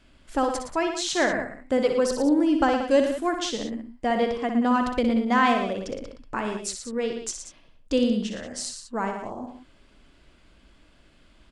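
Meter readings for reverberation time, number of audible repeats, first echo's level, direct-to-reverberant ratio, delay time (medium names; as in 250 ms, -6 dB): no reverb, 3, -7.5 dB, no reverb, 61 ms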